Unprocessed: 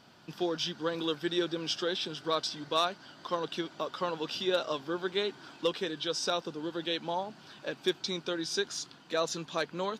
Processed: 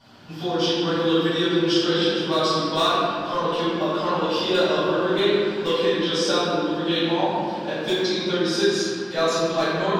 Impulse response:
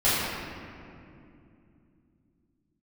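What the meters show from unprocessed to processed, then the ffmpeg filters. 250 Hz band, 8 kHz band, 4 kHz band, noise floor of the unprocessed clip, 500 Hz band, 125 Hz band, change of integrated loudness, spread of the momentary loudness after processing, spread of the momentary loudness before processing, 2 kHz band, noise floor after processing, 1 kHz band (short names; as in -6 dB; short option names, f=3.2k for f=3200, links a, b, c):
+13.5 dB, +6.0 dB, +9.5 dB, -56 dBFS, +12.0 dB, +14.5 dB, +11.0 dB, 4 LU, 6 LU, +10.5 dB, -31 dBFS, +11.5 dB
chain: -filter_complex "[0:a]asoftclip=type=hard:threshold=-20dB[a];[1:a]atrim=start_sample=2205[b];[a][b]afir=irnorm=-1:irlink=0,volume=-5.5dB"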